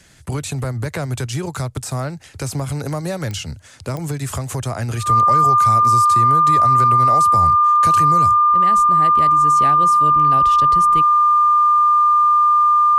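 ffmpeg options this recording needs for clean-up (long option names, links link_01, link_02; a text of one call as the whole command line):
ffmpeg -i in.wav -af "adeclick=threshold=4,bandreject=frequency=1200:width=30" out.wav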